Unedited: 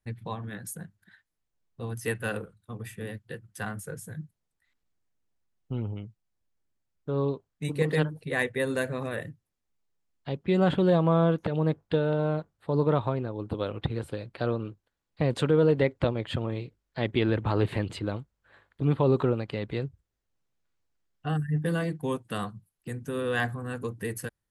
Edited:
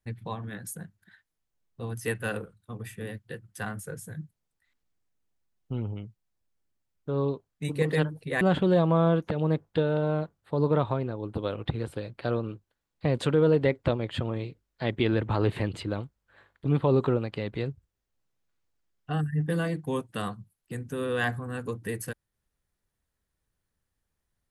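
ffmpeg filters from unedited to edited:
-filter_complex "[0:a]asplit=2[a][b];[a]atrim=end=8.412[c];[b]atrim=start=10.568[d];[c][d]acrossfade=d=0.004:c1=hsin:c2=hsin"

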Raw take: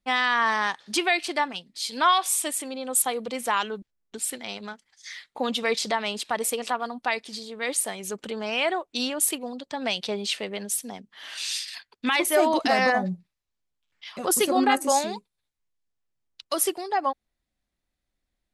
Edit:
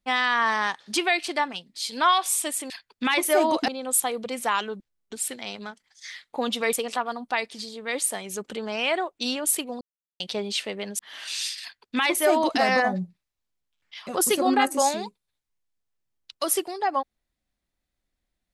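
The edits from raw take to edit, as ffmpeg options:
-filter_complex "[0:a]asplit=7[a][b][c][d][e][f][g];[a]atrim=end=2.702[h];[b]atrim=start=11.718:end=12.702[i];[c]atrim=start=2.698:end=5.752[j];[d]atrim=start=6.468:end=9.55,asetpts=PTS-STARTPTS,afade=t=out:st=3.078:d=0.004:c=hsin[k];[e]atrim=start=9.55:end=9.94,asetpts=PTS-STARTPTS,volume=0[l];[f]atrim=start=9.94:end=10.732,asetpts=PTS-STARTPTS,afade=t=in:d=0.004:c=hsin[m];[g]atrim=start=11.088[n];[h][i]acrossfade=d=0.004:c1=hsin:c2=hsin[o];[o][j]acrossfade=d=0.004:c1=hsin:c2=hsin[p];[k][l][m]concat=n=3:v=0:a=1[q];[p][q]acrossfade=d=0.004:c1=hsin:c2=hsin[r];[r][n]acrossfade=d=0.004:c1=hsin:c2=hsin"

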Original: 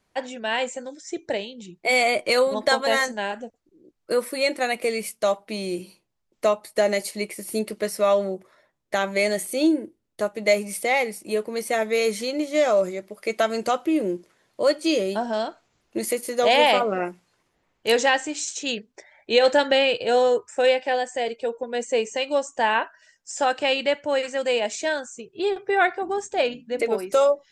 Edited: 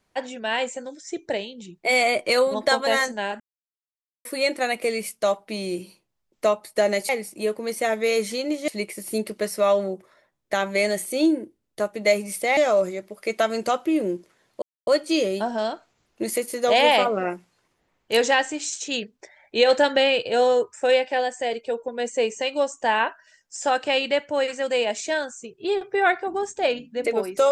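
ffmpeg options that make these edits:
-filter_complex "[0:a]asplit=7[a][b][c][d][e][f][g];[a]atrim=end=3.4,asetpts=PTS-STARTPTS,afade=t=out:st=3.396:d=0.004:c=hsin[h];[b]atrim=start=3.4:end=4.25,asetpts=PTS-STARTPTS,volume=0[i];[c]atrim=start=4.25:end=7.092,asetpts=PTS-STARTPTS,afade=t=in:d=0.004:c=hsin[j];[d]atrim=start=10.978:end=12.572[k];[e]atrim=start=7.088:end=10.982[l];[f]atrim=start=12.568:end=14.62,asetpts=PTS-STARTPTS,afade=t=out:st=2.048:d=0.004:c=hsin,apad=pad_dur=0.25[m];[g]atrim=start=14.62,asetpts=PTS-STARTPTS,afade=t=in:d=0.004:c=hsin[n];[h][i][j]concat=n=3:v=0:a=1[o];[o][k]acrossfade=d=0.004:c1=hsin:c2=hsin[p];[p][l]acrossfade=d=0.004:c1=hsin:c2=hsin[q];[m][n]concat=n=2:v=0:a=1[r];[q][r]acrossfade=d=0.004:c1=hsin:c2=hsin"

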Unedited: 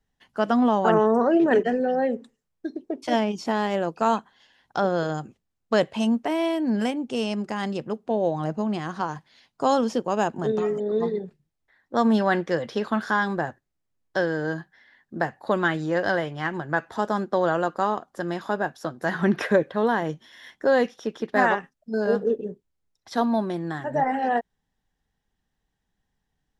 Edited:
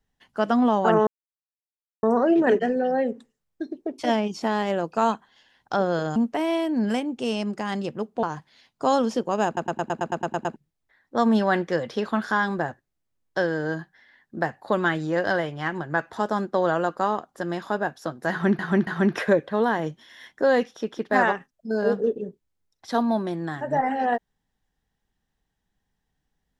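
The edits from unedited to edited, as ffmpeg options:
-filter_complex "[0:a]asplit=16[a][b][c][d][e][f][g][h][i][j][k][l][m][n][o][p];[a]atrim=end=1.07,asetpts=PTS-STARTPTS,afade=t=out:st=1.066:d=0.004:c=hsin,apad=pad_dur=0.96[q];[b]atrim=start=1.07:end=5.202,asetpts=PTS-STARTPTS,afade=t=in:d=0.004:c=hsin[r];[c]atrim=start=6.068:end=8.142[s];[d]atrim=start=9.018:end=10.362[t];[e]atrim=start=10.248:end=10.362[u];[f]atrim=start=10.248:end=10.362[v];[g]atrim=start=10.248:end=10.362[w];[h]atrim=start=10.248:end=10.362[x];[i]atrim=start=10.248:end=10.362[y];[j]atrim=start=10.248:end=10.362[z];[k]atrim=start=10.248:end=10.362[aa];[l]atrim=start=10.248:end=10.362[ab];[m]atrim=start=10.248:end=10.362[ac];[n]atrim=start=11.348:end=19.382[ad];[o]atrim=start=19.098:end=19.382[ae];[p]atrim=start=19.098[af];[q][r]concat=n=2:v=0:a=1[ag];[ag][s]acrossfade=d=0.004:c1=hsin:c2=hsin[ah];[ah][t]acrossfade=d=0.004:c1=hsin:c2=hsin[ai];[ai][u]acrossfade=d=0.004:c1=hsin:c2=hsin[aj];[aj][v]acrossfade=d=0.004:c1=hsin:c2=hsin[ak];[ak][w]acrossfade=d=0.004:c1=hsin:c2=hsin[al];[al][x]acrossfade=d=0.004:c1=hsin:c2=hsin[am];[am][y]acrossfade=d=0.004:c1=hsin:c2=hsin[an];[an][z]acrossfade=d=0.004:c1=hsin:c2=hsin[ao];[ao][aa]acrossfade=d=0.004:c1=hsin:c2=hsin[ap];[ap][ab]acrossfade=d=0.004:c1=hsin:c2=hsin[aq];[aq][ac]acrossfade=d=0.004:c1=hsin:c2=hsin[ar];[ar][ad]acrossfade=d=0.004:c1=hsin:c2=hsin[as];[as][ae]acrossfade=d=0.004:c1=hsin:c2=hsin[at];[at][af]acrossfade=d=0.004:c1=hsin:c2=hsin"

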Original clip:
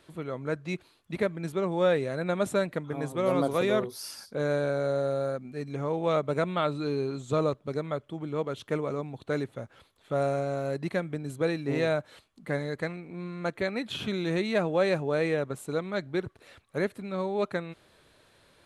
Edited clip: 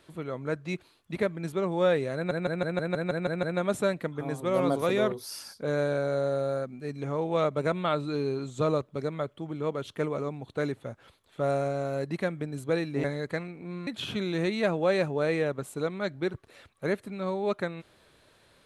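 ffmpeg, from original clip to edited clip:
-filter_complex "[0:a]asplit=11[a][b][c][d][e][f][g][h][i][j][k];[a]atrim=end=2.312[l];[b]atrim=start=2.148:end=2.312[m];[c]atrim=start=2.148:end=2.312[n];[d]atrim=start=2.148:end=2.312[o];[e]atrim=start=2.148:end=2.312[p];[f]atrim=start=2.148:end=2.312[q];[g]atrim=start=2.148:end=2.312[r];[h]atrim=start=2.148:end=2.312[s];[i]atrim=start=2.148:end=11.762[t];[j]atrim=start=12.528:end=13.362[u];[k]atrim=start=13.788[v];[l][m]acrossfade=d=0.004:c1=hsin:c2=hsin[w];[w][n]acrossfade=d=0.004:c1=hsin:c2=hsin[x];[x][o]acrossfade=d=0.004:c1=hsin:c2=hsin[y];[y][p]acrossfade=d=0.004:c1=hsin:c2=hsin[z];[z][q]acrossfade=d=0.004:c1=hsin:c2=hsin[aa];[aa][r]acrossfade=d=0.004:c1=hsin:c2=hsin[ab];[ab][s]acrossfade=d=0.004:c1=hsin:c2=hsin[ac];[ac][t]acrossfade=d=0.004:c1=hsin:c2=hsin[ad];[ad][u]acrossfade=d=0.004:c1=hsin:c2=hsin[ae];[ae][v]acrossfade=d=0.004:c1=hsin:c2=hsin"

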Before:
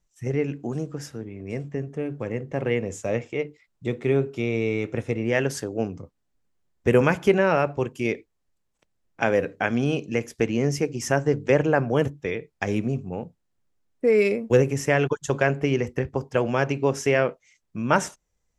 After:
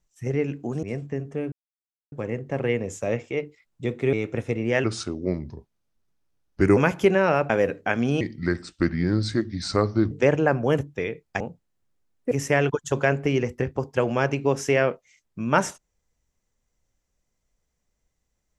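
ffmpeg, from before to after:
-filter_complex "[0:a]asplit=11[a][b][c][d][e][f][g][h][i][j][k];[a]atrim=end=0.832[l];[b]atrim=start=1.448:end=2.14,asetpts=PTS-STARTPTS,afade=t=out:st=0.688:d=0.004:c=hsin,apad=pad_dur=0.6[m];[c]atrim=start=2.14:end=4.152,asetpts=PTS-STARTPTS,afade=t=in:d=0.004:c=hsin[n];[d]atrim=start=4.728:end=5.444[o];[e]atrim=start=5.44:end=7,asetpts=PTS-STARTPTS,asetrate=35721,aresample=44100,atrim=end_sample=84933,asetpts=PTS-STARTPTS[p];[f]atrim=start=6.996:end=7.732[q];[g]atrim=start=9.238:end=9.954[r];[h]atrim=start=9.95:end=11.38,asetpts=PTS-STARTPTS,asetrate=33075,aresample=44100[s];[i]atrim=start=11.376:end=12.672[t];[j]atrim=start=13.158:end=14.072[u];[k]atrim=start=14.688[v];[m][n]concat=n=2:v=0:a=1[w];[l][w]acrossfade=d=0.004:c1=hsin:c2=hsin[x];[x][o]acrossfade=d=0.004:c1=hsin:c2=hsin[y];[y][p]acrossfade=d=0.004:c1=hsin:c2=hsin[z];[z][q]acrossfade=d=0.004:c1=hsin:c2=hsin[aa];[aa][r]acrossfade=d=0.004:c1=hsin:c2=hsin[ab];[ab][s]acrossfade=d=0.004:c1=hsin:c2=hsin[ac];[ac][t]acrossfade=d=0.004:c1=hsin:c2=hsin[ad];[ad][u]acrossfade=d=0.004:c1=hsin:c2=hsin[ae];[ae][v]acrossfade=d=0.004:c1=hsin:c2=hsin"

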